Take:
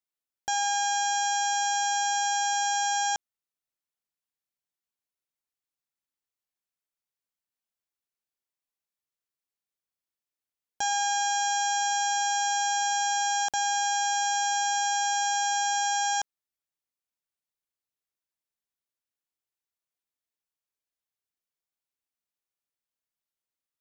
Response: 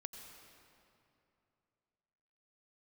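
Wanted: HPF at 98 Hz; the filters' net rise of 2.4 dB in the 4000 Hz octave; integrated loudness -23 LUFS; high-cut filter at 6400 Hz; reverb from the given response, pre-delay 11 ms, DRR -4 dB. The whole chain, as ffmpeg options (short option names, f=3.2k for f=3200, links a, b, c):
-filter_complex "[0:a]highpass=98,lowpass=6.4k,equalizer=f=4k:t=o:g=4.5,asplit=2[a][b];[1:a]atrim=start_sample=2205,adelay=11[c];[b][c]afir=irnorm=-1:irlink=0,volume=7.5dB[d];[a][d]amix=inputs=2:normalize=0,volume=-1.5dB"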